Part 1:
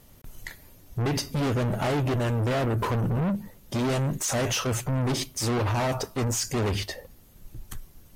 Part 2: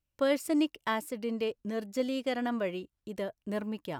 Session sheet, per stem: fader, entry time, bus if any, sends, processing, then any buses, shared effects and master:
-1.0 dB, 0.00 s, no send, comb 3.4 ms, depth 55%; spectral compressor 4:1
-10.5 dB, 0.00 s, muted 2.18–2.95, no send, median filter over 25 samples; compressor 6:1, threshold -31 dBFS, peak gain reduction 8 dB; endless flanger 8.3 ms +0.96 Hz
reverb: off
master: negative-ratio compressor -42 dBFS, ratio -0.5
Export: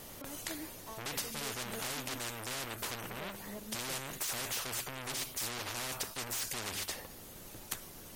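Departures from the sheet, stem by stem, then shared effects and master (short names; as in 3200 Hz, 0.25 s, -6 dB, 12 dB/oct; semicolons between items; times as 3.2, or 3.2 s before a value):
stem 1: missing comb 3.4 ms, depth 55%; master: missing negative-ratio compressor -42 dBFS, ratio -0.5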